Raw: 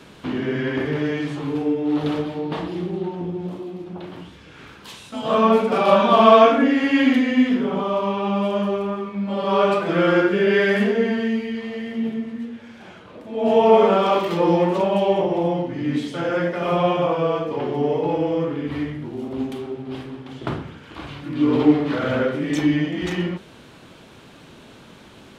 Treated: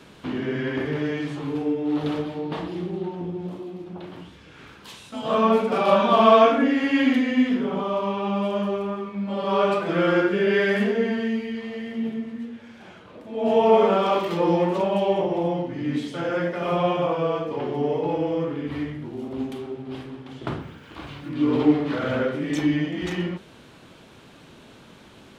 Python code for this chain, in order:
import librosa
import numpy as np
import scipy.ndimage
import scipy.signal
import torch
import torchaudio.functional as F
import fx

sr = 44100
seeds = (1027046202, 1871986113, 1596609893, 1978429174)

y = fx.dmg_noise_colour(x, sr, seeds[0], colour='blue', level_db=-72.0, at=(20.59, 21.29), fade=0.02)
y = F.gain(torch.from_numpy(y), -3.0).numpy()